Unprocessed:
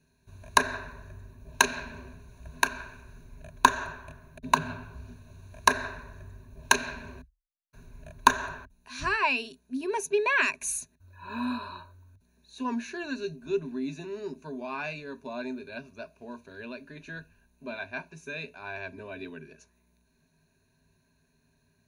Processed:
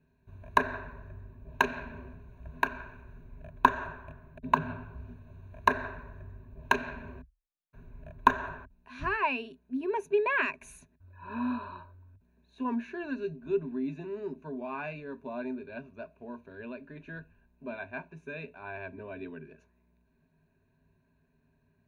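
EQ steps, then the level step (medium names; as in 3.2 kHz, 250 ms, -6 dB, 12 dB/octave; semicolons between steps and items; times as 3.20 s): treble shelf 2.2 kHz -10.5 dB; high-order bell 7 kHz -11.5 dB; 0.0 dB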